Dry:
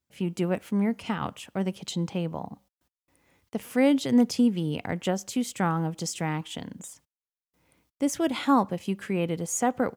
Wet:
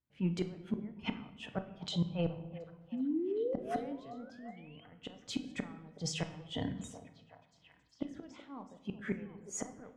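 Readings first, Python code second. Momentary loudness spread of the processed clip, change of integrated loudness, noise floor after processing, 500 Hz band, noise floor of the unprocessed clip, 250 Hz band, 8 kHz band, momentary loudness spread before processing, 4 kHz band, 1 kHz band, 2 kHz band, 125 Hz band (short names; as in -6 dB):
15 LU, -12.0 dB, -67 dBFS, -10.0 dB, under -85 dBFS, -12.5 dB, -12.0 dB, 15 LU, -7.0 dB, -16.5 dB, -12.0 dB, -8.5 dB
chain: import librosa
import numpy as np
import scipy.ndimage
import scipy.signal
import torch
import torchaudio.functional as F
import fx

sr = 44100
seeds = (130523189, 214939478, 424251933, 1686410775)

y = fx.noise_reduce_blind(x, sr, reduce_db=10)
y = scipy.signal.sosfilt(scipy.signal.butter(2, 5400.0, 'lowpass', fs=sr, output='sos'), y)
y = fx.bass_treble(y, sr, bass_db=5, treble_db=-10)
y = fx.transient(y, sr, attack_db=-7, sustain_db=4)
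y = fx.spec_paint(y, sr, seeds[0], shape='rise', start_s=2.92, length_s=1.93, low_hz=230.0, high_hz=3300.0, level_db=-37.0)
y = fx.gate_flip(y, sr, shuts_db=-25.0, range_db=-29)
y = fx.echo_stepped(y, sr, ms=372, hz=520.0, octaves=0.7, feedback_pct=70, wet_db=-10.5)
y = fx.room_shoebox(y, sr, seeds[1], volume_m3=320.0, walls='mixed', distance_m=0.45)
y = F.gain(torch.from_numpy(y), 2.5).numpy()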